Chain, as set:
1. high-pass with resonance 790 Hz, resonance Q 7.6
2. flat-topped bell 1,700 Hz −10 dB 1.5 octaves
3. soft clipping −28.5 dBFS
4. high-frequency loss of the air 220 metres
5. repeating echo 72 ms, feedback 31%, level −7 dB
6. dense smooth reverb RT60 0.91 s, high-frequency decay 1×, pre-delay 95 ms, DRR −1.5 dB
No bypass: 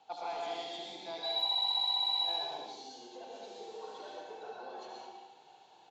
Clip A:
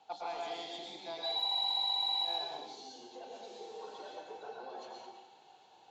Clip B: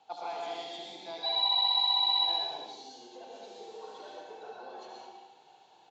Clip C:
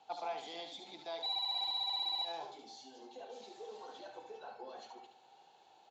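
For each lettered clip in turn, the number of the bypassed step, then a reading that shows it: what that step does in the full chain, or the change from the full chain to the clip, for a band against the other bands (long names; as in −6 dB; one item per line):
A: 5, change in integrated loudness −2.5 LU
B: 3, distortion level −11 dB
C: 6, echo-to-direct ratio 3.0 dB to −6.5 dB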